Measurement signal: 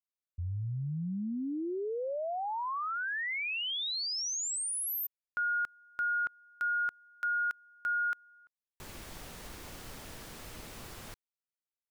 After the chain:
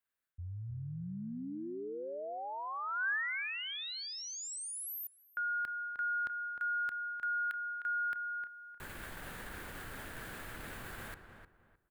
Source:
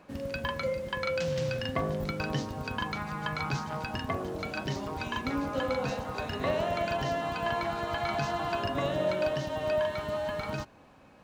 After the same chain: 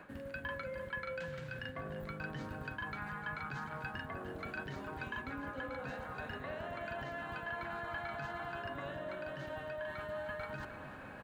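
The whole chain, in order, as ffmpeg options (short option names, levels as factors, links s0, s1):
-filter_complex "[0:a]equalizer=f=5600:t=o:w=0.7:g=-10,areverse,acompressor=threshold=0.00447:ratio=5:attack=1:release=267:detection=peak,areverse,equalizer=f=1600:t=o:w=0.51:g=11,asplit=2[s0][s1];[s1]adelay=307,lowpass=f=1900:p=1,volume=0.398,asplit=2[s2][s3];[s3]adelay=307,lowpass=f=1900:p=1,volume=0.28,asplit=2[s4][s5];[s5]adelay=307,lowpass=f=1900:p=1,volume=0.28[s6];[s0][s2][s4][s6]amix=inputs=4:normalize=0,acrossover=split=340|1800[s7][s8][s9];[s8]acompressor=threshold=0.00794:ratio=3:attack=2.6:release=32:knee=2.83:detection=peak[s10];[s7][s10][s9]amix=inputs=3:normalize=0,volume=1.78"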